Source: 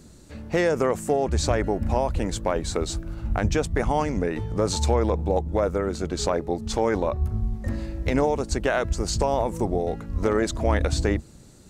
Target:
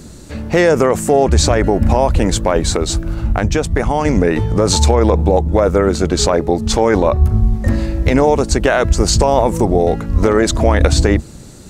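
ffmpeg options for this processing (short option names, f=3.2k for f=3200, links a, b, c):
-filter_complex "[0:a]asettb=1/sr,asplit=3[a][b][c];[a]atrim=end=2.734[d];[b]atrim=start=2.73:end=4.05,asetpts=PTS-STARTPTS,afade=t=in:d=0.004:c=qsin,afade=t=out:st=1.316:d=0.004:c=qsin,acompressor=threshold=-25dB:ratio=4[e];[c]atrim=start=4.046[f];[d][e]acrossfade=d=0.004:c1=hsin:c2=qsin[g];[g][f]acrossfade=d=0.004:c1=qsin:c2=hsin,alimiter=level_in=14dB:limit=-1dB:release=50:level=0:latency=1,volume=-1dB"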